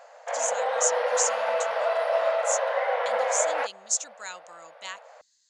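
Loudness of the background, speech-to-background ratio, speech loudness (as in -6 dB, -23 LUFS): -26.5 LUFS, -4.0 dB, -30.5 LUFS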